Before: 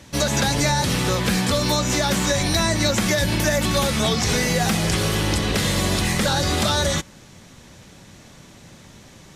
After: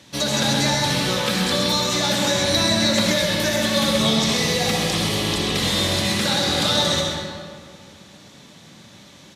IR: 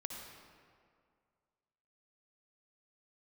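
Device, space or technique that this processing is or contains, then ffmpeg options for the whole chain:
PA in a hall: -filter_complex "[0:a]asettb=1/sr,asplit=3[s0][s1][s2];[s0]atrim=end=3.944[s3];[s1]atrim=start=3.94:end=5.6,asetpts=PTS-STARTPTS,afade=t=in:d=0.004:c=qsin,afade=t=out:st=1.656:d=0.004:c=qsin,bandreject=f=1500:w=7.2[s4];[s2]atrim=start=5.596[s5];[s3][s4]acrossfade=d=0.004:c1=hsin:c2=qsin[s6];[s6][s5]acrossfade=d=0.004:c1=qsin:c2=hsin,highpass=120,equalizer=f=3700:t=o:w=0.76:g=7,aecho=1:1:131:0.422[s7];[1:a]atrim=start_sample=2205[s8];[s7][s8]afir=irnorm=-1:irlink=0"

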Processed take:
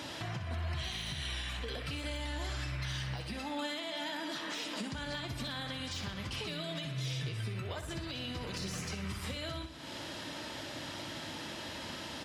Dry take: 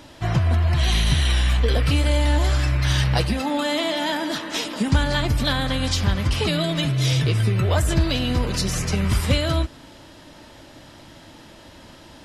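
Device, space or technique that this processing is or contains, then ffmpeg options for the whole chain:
broadcast voice chain: -af "highpass=90,deesser=0.6,acompressor=threshold=0.0126:ratio=4,equalizer=f=3200:t=o:w=2.9:g=5.5,alimiter=level_in=1.88:limit=0.0631:level=0:latency=1:release=245,volume=0.531,aecho=1:1:62|124|186|248|310:0.335|0.164|0.0804|0.0394|0.0193"

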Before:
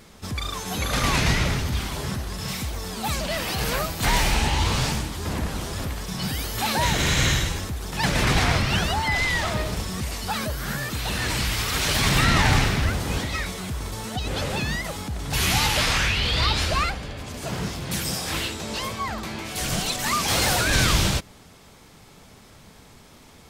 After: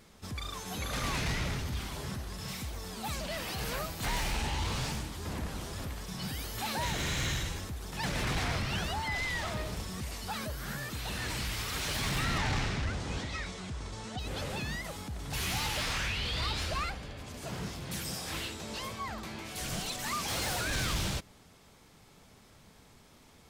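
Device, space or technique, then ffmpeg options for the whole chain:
saturation between pre-emphasis and de-emphasis: -filter_complex "[0:a]asettb=1/sr,asplit=3[s0][s1][s2];[s0]atrim=end=12.384[s3];[s1]atrim=start=12.38:end=14.19,asetpts=PTS-STARTPTS,afade=t=in:d=0.004:c=qsin,afade=t=out:st=1.806:d=0.004:c=qsin,lowpass=f=7900:w=0.5412,lowpass=f=7900:w=1.3066[s4];[s2]atrim=start=14.186[s5];[s3][s4]acrossfade=d=0.004:c1=hsin:c2=qsin[s6];[s6][s5]acrossfade=d=0.004:c1=qsin:c2=hsin,highshelf=f=3600:g=7.5,asoftclip=type=tanh:threshold=0.168,highshelf=f=3600:g=-7.5,volume=0.355"

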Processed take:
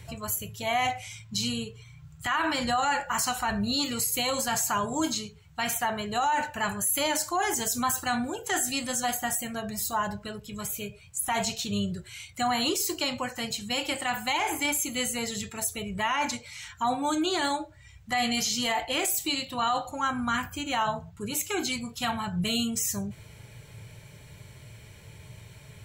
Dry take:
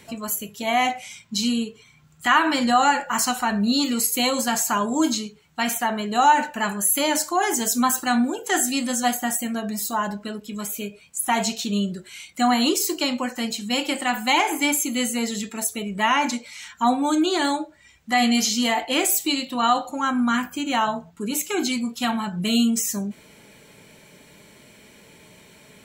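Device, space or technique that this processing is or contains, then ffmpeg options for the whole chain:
car stereo with a boomy subwoofer: -af "lowshelf=f=160:t=q:w=3:g=12.5,alimiter=limit=0.178:level=0:latency=1:release=17,volume=0.708"

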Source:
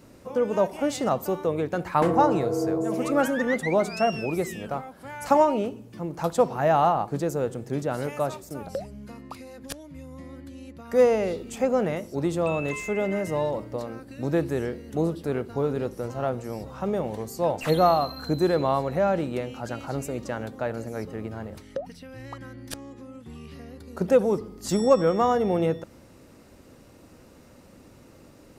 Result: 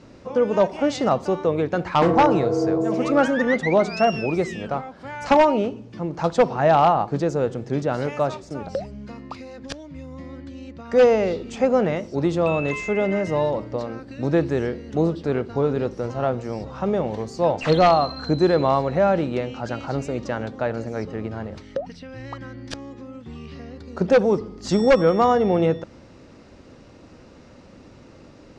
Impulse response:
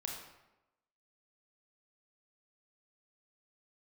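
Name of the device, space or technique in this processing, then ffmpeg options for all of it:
synthesiser wavefolder: -af "aeval=exprs='0.237*(abs(mod(val(0)/0.237+3,4)-2)-1)':c=same,lowpass=f=6000:w=0.5412,lowpass=f=6000:w=1.3066,volume=1.68"

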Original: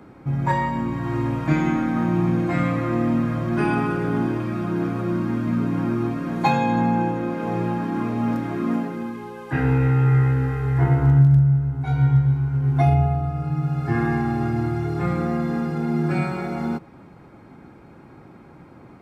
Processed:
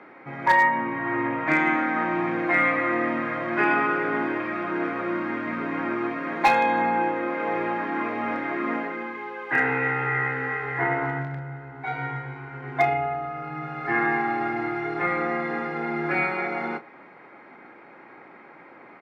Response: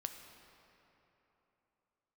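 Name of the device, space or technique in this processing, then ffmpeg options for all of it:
megaphone: -filter_complex "[0:a]highpass=460,lowpass=2800,equalizer=f=2000:t=o:w=0.49:g=10.5,asoftclip=type=hard:threshold=0.188,asplit=2[s0][s1];[s1]adelay=32,volume=0.224[s2];[s0][s2]amix=inputs=2:normalize=0,asettb=1/sr,asplit=3[s3][s4][s5];[s3]atrim=end=0.634[s6];[s4]atrim=start=0.63:end=1.47,asetpts=PTS-STARTPTS,afade=t=in:d=0.004:c=qsin,afade=t=out:st=0.836:d=0.004:c=qsin,bass=f=250:g=5,treble=f=4000:g=-14[s7];[s5]atrim=start=1.466[s8];[s6][s7]acrossfade=d=0.004:c1=hsin:c2=qsin[s9];[s9][s8]acrossfade=d=0.004:c1=qsin:c2=hsin,volume=1.41"

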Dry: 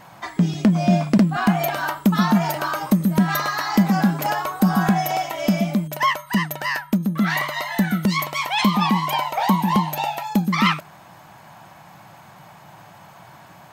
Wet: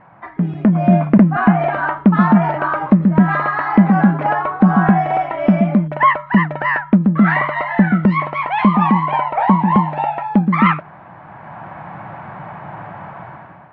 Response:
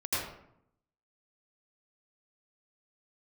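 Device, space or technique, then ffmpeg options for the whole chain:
action camera in a waterproof case: -af "lowpass=f=2000:w=0.5412,lowpass=f=2000:w=1.3066,dynaudnorm=f=190:g=7:m=5.31,volume=0.891" -ar 48000 -c:a aac -b:a 64k

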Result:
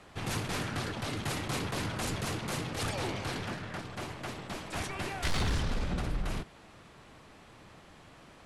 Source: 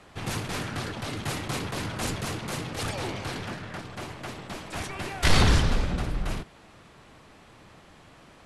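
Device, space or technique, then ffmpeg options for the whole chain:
clipper into limiter: -af "asoftclip=type=hard:threshold=0.178,alimiter=limit=0.075:level=0:latency=1:release=29,volume=0.794"

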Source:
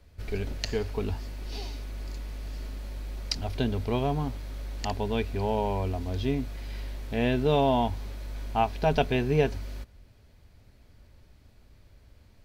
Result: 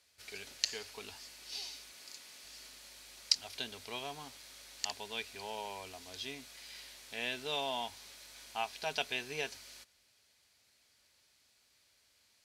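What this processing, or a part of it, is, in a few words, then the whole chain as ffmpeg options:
piezo pickup straight into a mixer: -filter_complex "[0:a]lowpass=8900,aderivative,asettb=1/sr,asplit=3[s0][s1][s2];[s0]atrim=end=1.924[s3];[s1]atrim=start=1.92:end=2.44,asetpts=PTS-STARTPTS,afade=t=in:d=0.004:c=qsin,afade=t=out:st=0.516:d=0.004:c=qsin,highpass=110[s4];[s2]atrim=start=2.436[s5];[s3][s4]acrossfade=d=0.004:c1=hsin:c2=qsin[s6];[s6][s5]acrossfade=d=0.004:c1=qsin:c2=hsin,volume=2.11"

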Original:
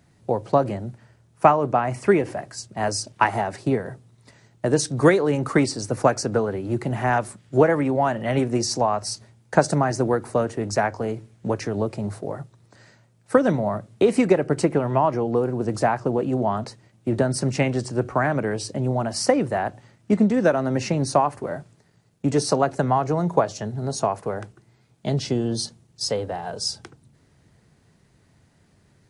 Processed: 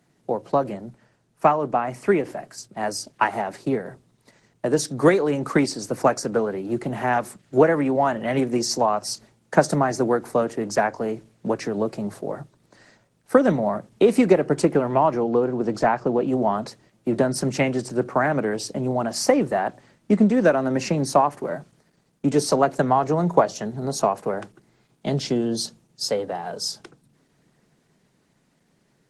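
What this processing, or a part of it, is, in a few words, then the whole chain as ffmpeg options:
video call: -filter_complex "[0:a]asplit=3[s0][s1][s2];[s0]afade=t=out:st=15.22:d=0.02[s3];[s1]lowpass=5900,afade=t=in:st=15.22:d=0.02,afade=t=out:st=16.26:d=0.02[s4];[s2]afade=t=in:st=16.26:d=0.02[s5];[s3][s4][s5]amix=inputs=3:normalize=0,highpass=f=150:w=0.5412,highpass=f=150:w=1.3066,dynaudnorm=f=630:g=13:m=5.01,volume=0.841" -ar 48000 -c:a libopus -b:a 16k

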